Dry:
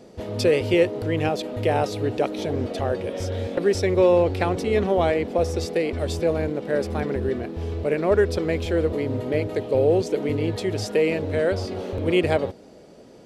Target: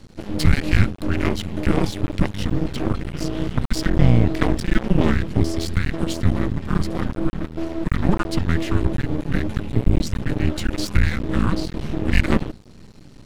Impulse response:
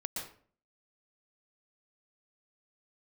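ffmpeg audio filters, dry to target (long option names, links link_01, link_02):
-af "afreqshift=-410,aeval=exprs='max(val(0),0)':channel_layout=same,volume=7dB"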